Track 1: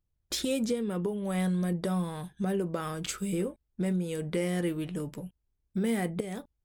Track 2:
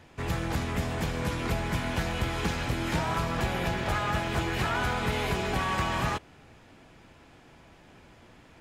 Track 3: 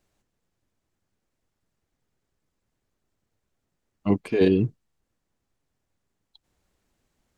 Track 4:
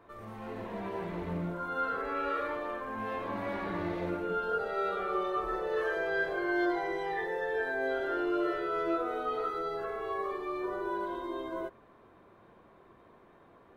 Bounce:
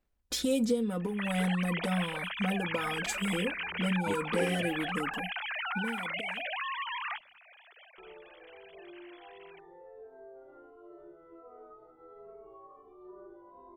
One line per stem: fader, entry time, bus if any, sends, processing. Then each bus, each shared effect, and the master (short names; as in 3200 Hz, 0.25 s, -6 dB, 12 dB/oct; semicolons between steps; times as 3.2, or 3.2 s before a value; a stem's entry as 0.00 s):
5.69 s -3.5 dB -> 5.93 s -15.5 dB, 0.00 s, no send, comb 4 ms, depth 89%
-2.5 dB, 1.00 s, no send, sine-wave speech; tilt shelf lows -10 dB, about 1400 Hz; compressor, threshold -31 dBFS, peak gain reduction 9.5 dB
-7.5 dB, 0.00 s, no send, transient shaper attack +10 dB, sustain -2 dB; LPF 3300 Hz; low shelf 130 Hz -10.5 dB; auto duck -12 dB, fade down 0.30 s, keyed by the first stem
-7.0 dB, 2.45 s, muted 5.21–7.98, no send, compressor 6:1, threshold -38 dBFS, peak gain reduction 11.5 dB; polynomial smoothing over 65 samples; endless flanger 2.8 ms -1.4 Hz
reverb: off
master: dry